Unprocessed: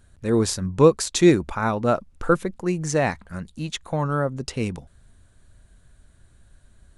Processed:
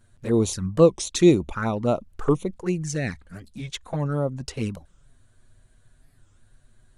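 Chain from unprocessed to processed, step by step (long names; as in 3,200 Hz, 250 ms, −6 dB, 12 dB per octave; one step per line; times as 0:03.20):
0:02.82–0:03.51: parametric band 920 Hz −13.5 dB → −6.5 dB 1.5 octaves
flanger swept by the level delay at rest 9.2 ms, full sweep at −18.5 dBFS
wow of a warped record 45 rpm, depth 250 cents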